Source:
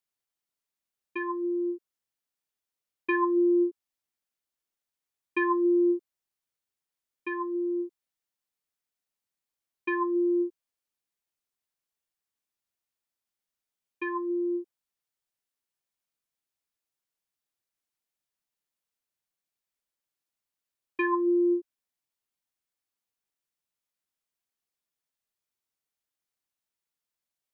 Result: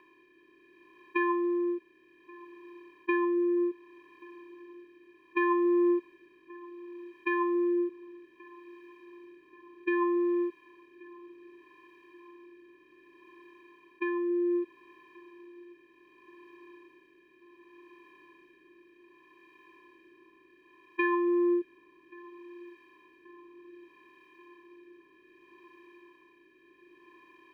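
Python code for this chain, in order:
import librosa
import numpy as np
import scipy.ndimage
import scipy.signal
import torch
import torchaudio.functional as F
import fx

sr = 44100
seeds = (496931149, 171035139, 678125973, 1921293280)

y = fx.bin_compress(x, sr, power=0.4)
y = fx.rotary(y, sr, hz=0.65)
y = fx.echo_filtered(y, sr, ms=1131, feedback_pct=66, hz=2000.0, wet_db=-21.5)
y = y * 10.0 ** (-1.5 / 20.0)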